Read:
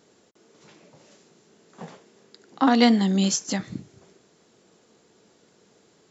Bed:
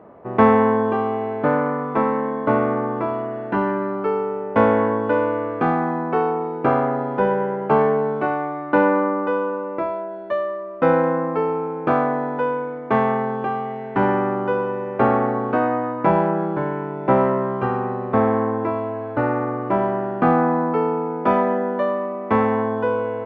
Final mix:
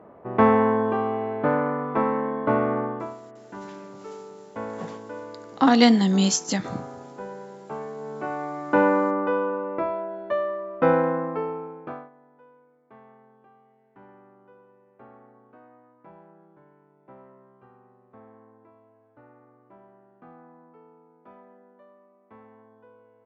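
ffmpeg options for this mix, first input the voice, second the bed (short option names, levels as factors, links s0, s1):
-filter_complex "[0:a]adelay=3000,volume=1.19[s0];[1:a]volume=3.98,afade=t=out:st=2.8:d=0.38:silence=0.188365,afade=t=in:st=7.95:d=0.86:silence=0.16788,afade=t=out:st=10.87:d=1.23:silence=0.0316228[s1];[s0][s1]amix=inputs=2:normalize=0"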